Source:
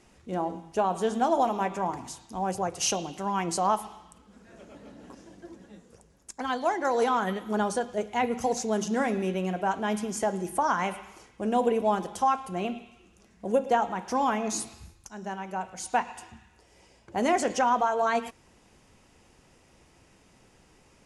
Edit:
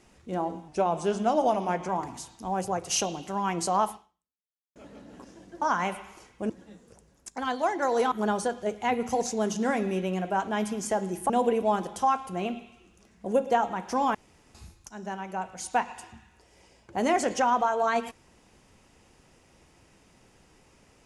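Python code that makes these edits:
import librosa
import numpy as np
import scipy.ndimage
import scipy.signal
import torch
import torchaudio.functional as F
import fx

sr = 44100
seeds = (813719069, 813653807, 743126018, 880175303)

y = fx.edit(x, sr, fx.speed_span(start_s=0.68, length_s=1.11, speed=0.92),
    fx.fade_out_span(start_s=3.81, length_s=0.85, curve='exp'),
    fx.cut(start_s=7.14, length_s=0.29),
    fx.move(start_s=10.61, length_s=0.88, to_s=5.52),
    fx.room_tone_fill(start_s=14.34, length_s=0.4), tone=tone)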